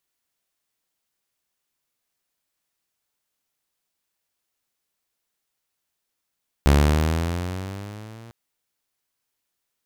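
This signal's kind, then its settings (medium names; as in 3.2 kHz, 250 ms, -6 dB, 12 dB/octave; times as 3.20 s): gliding synth tone saw, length 1.65 s, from 69.8 Hz, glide +9 st, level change -29 dB, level -9.5 dB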